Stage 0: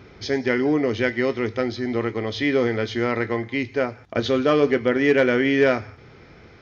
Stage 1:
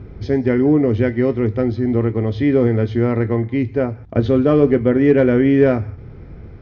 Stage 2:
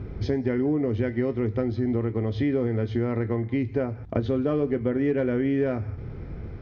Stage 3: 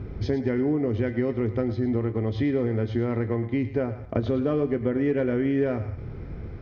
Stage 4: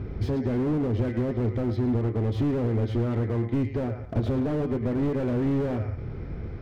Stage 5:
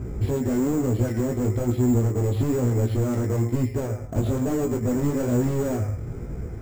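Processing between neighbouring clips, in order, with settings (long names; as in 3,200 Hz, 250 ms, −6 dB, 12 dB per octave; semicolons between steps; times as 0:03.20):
spectral tilt −4.5 dB per octave; level −1 dB
downward compressor 4 to 1, threshold −23 dBFS, peak gain reduction 13 dB
feedback echo with a high-pass in the loop 109 ms, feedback 39%, high-pass 420 Hz, level −12 dB
slew-rate limiting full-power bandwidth 18 Hz; level +1.5 dB
chorus effect 1.1 Hz, delay 16 ms, depth 4.3 ms; bad sample-rate conversion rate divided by 6×, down none, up hold; one half of a high-frequency compander decoder only; level +5.5 dB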